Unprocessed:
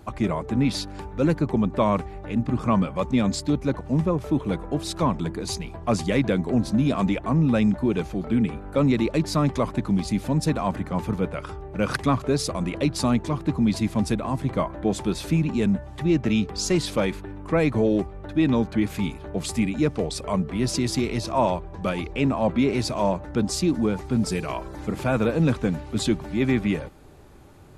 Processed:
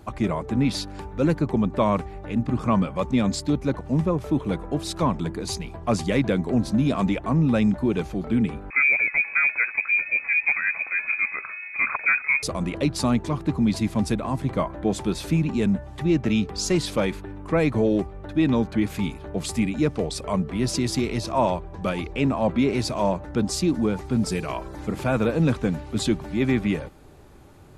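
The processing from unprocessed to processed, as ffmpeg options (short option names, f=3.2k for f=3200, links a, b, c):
-filter_complex "[0:a]asettb=1/sr,asplit=3[a][b][c];[a]atrim=end=8.704[d];[b]atrim=start=8.7:end=12.43,asetpts=PTS-STARTPTS,afade=t=in:d=0.004:c=qsin,afade=t=out:st=3.726:d=0.004:c=qsin,lowpass=f=2.2k:t=q:w=0.5098,lowpass=f=2.2k:t=q:w=0.6013,lowpass=f=2.2k:t=q:w=0.9,lowpass=f=2.2k:t=q:w=2.563,afreqshift=-2600[e];[c]atrim=start=12.426[f];[d][e]acrossfade=d=0.004:c1=hsin:c2=qsin[g];[g][f]acrossfade=d=0.004:c1=qsin:c2=hsin"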